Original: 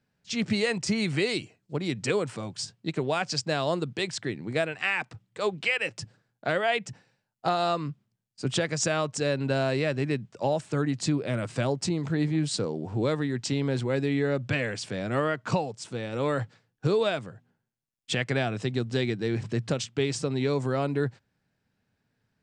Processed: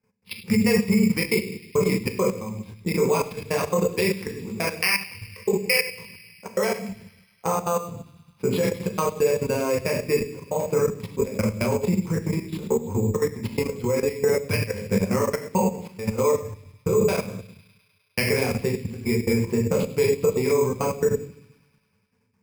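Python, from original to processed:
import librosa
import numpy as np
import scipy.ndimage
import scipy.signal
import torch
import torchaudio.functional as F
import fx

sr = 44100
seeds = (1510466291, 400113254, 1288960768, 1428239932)

y = fx.step_gate(x, sr, bpm=137, pattern='x.x.x.xxx.', floor_db=-60.0, edge_ms=4.5)
y = fx.transient(y, sr, attack_db=8, sustain_db=4)
y = scipy.signal.sosfilt(scipy.signal.butter(2, 41.0, 'highpass', fs=sr, output='sos'), y)
y = fx.room_shoebox(y, sr, seeds[0], volume_m3=78.0, walls='mixed', distance_m=0.9)
y = fx.level_steps(y, sr, step_db=12)
y = fx.ripple_eq(y, sr, per_octave=0.87, db=13)
y = fx.echo_wet_highpass(y, sr, ms=102, feedback_pct=77, hz=4600.0, wet_db=-7)
y = np.repeat(scipy.signal.resample_poly(y, 1, 6), 6)[:len(y)]
y = fx.peak_eq(y, sr, hz=1900.0, db=-4.5, octaves=0.26)
y = fx.band_squash(y, sr, depth_pct=40, at=(11.21, 13.65))
y = y * 10.0 ** (1.5 / 20.0)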